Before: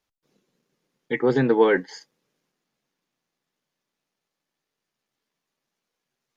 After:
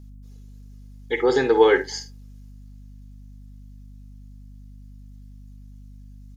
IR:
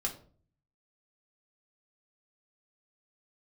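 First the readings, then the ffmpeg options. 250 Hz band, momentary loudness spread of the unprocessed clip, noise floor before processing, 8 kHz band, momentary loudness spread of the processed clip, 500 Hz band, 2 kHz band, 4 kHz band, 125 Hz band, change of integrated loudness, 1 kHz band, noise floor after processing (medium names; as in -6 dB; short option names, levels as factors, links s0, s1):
-2.5 dB, 7 LU, -84 dBFS, no reading, 15 LU, +2.5 dB, +2.0 dB, +7.5 dB, -4.5 dB, +1.0 dB, +3.0 dB, -43 dBFS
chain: -filter_complex "[0:a]bass=f=250:g=-12,treble=f=4000:g=13,aecho=1:1:2.4:0.41,aecho=1:1:52|73:0.266|0.126,aeval=exprs='val(0)+0.00708*(sin(2*PI*50*n/s)+sin(2*PI*2*50*n/s)/2+sin(2*PI*3*50*n/s)/3+sin(2*PI*4*50*n/s)/4+sin(2*PI*5*50*n/s)/5)':c=same,asplit=2[s0][s1];[1:a]atrim=start_sample=2205[s2];[s1][s2]afir=irnorm=-1:irlink=0,volume=0.112[s3];[s0][s3]amix=inputs=2:normalize=0"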